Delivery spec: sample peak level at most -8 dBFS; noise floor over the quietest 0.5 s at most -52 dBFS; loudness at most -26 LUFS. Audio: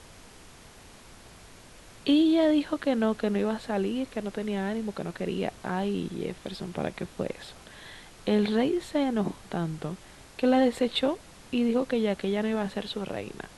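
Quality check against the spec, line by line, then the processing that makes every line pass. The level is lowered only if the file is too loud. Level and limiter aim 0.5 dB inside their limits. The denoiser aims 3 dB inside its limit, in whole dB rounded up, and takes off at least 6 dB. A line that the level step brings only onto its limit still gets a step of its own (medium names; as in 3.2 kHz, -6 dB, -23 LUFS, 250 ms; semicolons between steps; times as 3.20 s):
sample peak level -12.5 dBFS: pass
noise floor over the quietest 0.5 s -50 dBFS: fail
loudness -28.5 LUFS: pass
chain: noise reduction 6 dB, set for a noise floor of -50 dBFS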